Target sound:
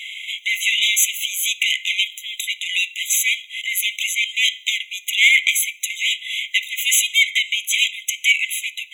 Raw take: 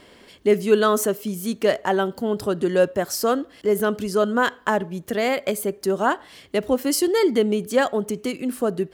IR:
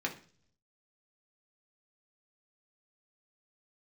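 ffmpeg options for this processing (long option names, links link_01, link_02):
-filter_complex "[0:a]asplit=2[link_01][link_02];[link_02]highpass=frequency=720:poles=1,volume=22dB,asoftclip=type=tanh:threshold=-4.5dB[link_03];[link_01][link_03]amix=inputs=2:normalize=0,lowpass=frequency=5400:poles=1,volume=-6dB,asplit=2[link_04][link_05];[1:a]atrim=start_sample=2205[link_06];[link_05][link_06]afir=irnorm=-1:irlink=0,volume=-6dB[link_07];[link_04][link_07]amix=inputs=2:normalize=0,afftfilt=real='re*eq(mod(floor(b*sr/1024/2000),2),1)':imag='im*eq(mod(floor(b*sr/1024/2000),2),1)':win_size=1024:overlap=0.75,volume=4dB"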